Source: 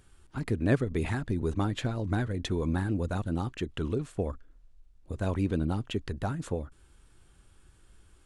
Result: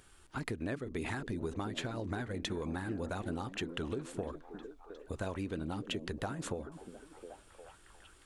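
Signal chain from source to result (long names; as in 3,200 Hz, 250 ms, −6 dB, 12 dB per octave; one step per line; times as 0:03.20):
low-shelf EQ 270 Hz −10.5 dB
downward compressor 12 to 1, threshold −38 dBFS, peak gain reduction 15 dB
on a send: echo through a band-pass that steps 357 ms, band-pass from 240 Hz, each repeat 0.7 octaves, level −6 dB
on the sum: level +4 dB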